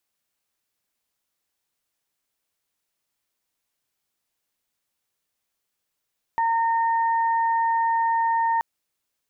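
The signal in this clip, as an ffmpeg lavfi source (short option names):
-f lavfi -i "aevalsrc='0.112*sin(2*PI*916*t)+0.0282*sin(2*PI*1832*t)':d=2.23:s=44100"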